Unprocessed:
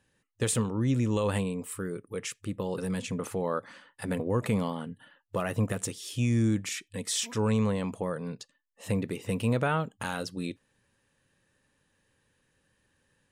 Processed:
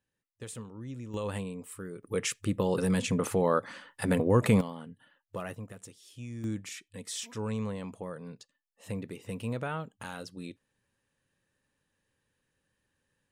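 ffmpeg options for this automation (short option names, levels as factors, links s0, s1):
-af "asetnsamples=n=441:p=0,asendcmd='1.14 volume volume -6.5dB;2.03 volume volume 4.5dB;4.61 volume volume -7dB;5.55 volume volume -15dB;6.44 volume volume -7.5dB',volume=0.188"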